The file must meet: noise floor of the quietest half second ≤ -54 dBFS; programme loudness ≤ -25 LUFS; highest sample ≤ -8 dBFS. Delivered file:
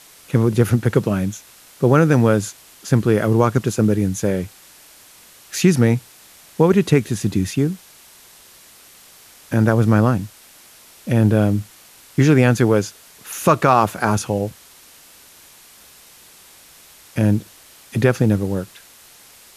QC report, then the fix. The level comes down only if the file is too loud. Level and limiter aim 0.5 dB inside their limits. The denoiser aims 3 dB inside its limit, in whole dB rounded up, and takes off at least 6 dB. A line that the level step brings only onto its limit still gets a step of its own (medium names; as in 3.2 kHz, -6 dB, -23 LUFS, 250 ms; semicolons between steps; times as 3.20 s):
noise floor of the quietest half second -47 dBFS: fail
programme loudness -18.0 LUFS: fail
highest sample -1.5 dBFS: fail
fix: trim -7.5 dB